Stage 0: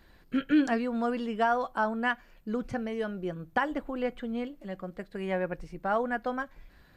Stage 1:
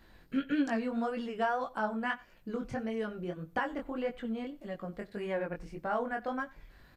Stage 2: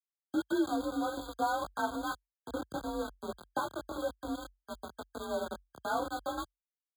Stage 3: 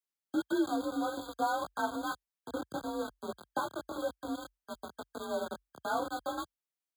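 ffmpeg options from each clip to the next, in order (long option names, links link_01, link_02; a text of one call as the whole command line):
ffmpeg -i in.wav -filter_complex "[0:a]asplit=2[link_01][link_02];[link_02]acompressor=threshold=-36dB:ratio=6,volume=1.5dB[link_03];[link_01][link_03]amix=inputs=2:normalize=0,flanger=delay=17.5:depth=6:speed=1.7,aecho=1:1:91:0.075,volume=-4dB" out.wav
ffmpeg -i in.wav -af "aeval=exprs='val(0)*gte(abs(val(0)),0.02)':channel_layout=same,afreqshift=46,afftfilt=real='re*eq(mod(floor(b*sr/1024/1600),2),0)':imag='im*eq(mod(floor(b*sr/1024/1600),2),0)':win_size=1024:overlap=0.75" out.wav
ffmpeg -i in.wav -af "highpass=100" out.wav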